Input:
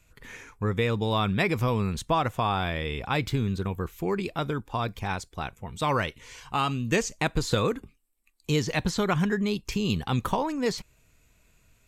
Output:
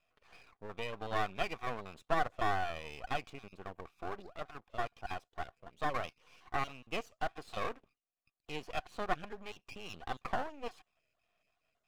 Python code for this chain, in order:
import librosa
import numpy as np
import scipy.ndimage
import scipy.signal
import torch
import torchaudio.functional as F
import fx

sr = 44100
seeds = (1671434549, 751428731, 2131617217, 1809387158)

y = fx.spec_dropout(x, sr, seeds[0], share_pct=20)
y = fx.vowel_filter(y, sr, vowel='a')
y = np.maximum(y, 0.0)
y = y * 10.0 ** (5.0 / 20.0)